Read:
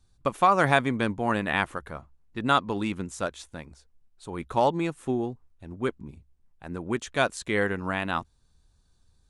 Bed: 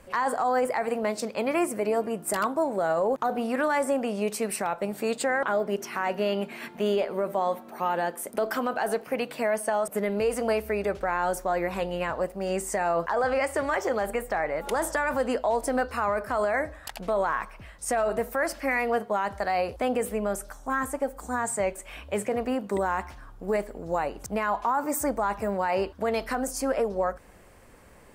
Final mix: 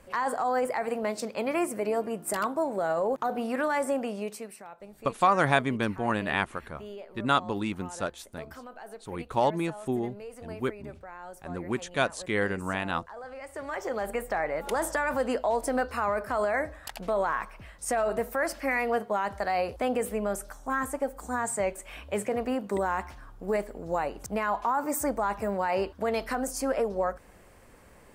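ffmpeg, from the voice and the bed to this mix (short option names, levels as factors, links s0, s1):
-filter_complex "[0:a]adelay=4800,volume=0.794[s0];[1:a]volume=4.47,afade=t=out:st=3.98:d=0.57:silence=0.188365,afade=t=in:st=13.41:d=0.84:silence=0.16788[s1];[s0][s1]amix=inputs=2:normalize=0"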